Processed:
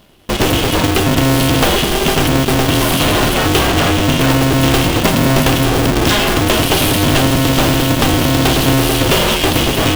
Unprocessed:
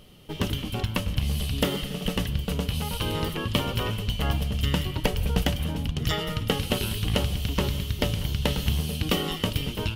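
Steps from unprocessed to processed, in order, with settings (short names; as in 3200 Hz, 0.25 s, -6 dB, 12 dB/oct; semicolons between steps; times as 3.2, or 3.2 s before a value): 3.68–4.21 steep low-pass 3600 Hz 96 dB/oct; in parallel at -3 dB: fuzz box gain 39 dB, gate -41 dBFS; on the sum: polarity switched at an audio rate 200 Hz; gain +3 dB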